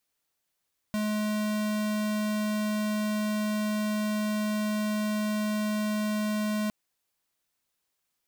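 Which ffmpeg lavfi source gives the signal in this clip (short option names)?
-f lavfi -i "aevalsrc='0.0376*(2*lt(mod(212*t,1),0.5)-1)':d=5.76:s=44100"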